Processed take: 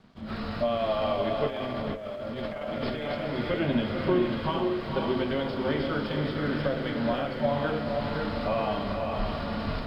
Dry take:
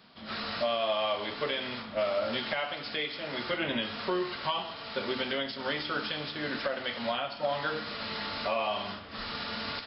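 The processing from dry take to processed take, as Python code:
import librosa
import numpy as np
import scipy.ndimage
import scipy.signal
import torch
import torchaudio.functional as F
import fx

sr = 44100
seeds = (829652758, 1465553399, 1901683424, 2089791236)

y = fx.tilt_eq(x, sr, slope=-4.0)
y = fx.echo_diffused(y, sr, ms=507, feedback_pct=46, wet_db=-3.0)
y = fx.over_compress(y, sr, threshold_db=-33.0, ratio=-1.0, at=(1.47, 3.15))
y = np.sign(y) * np.maximum(np.abs(y) - 10.0 ** (-59.5 / 20.0), 0.0)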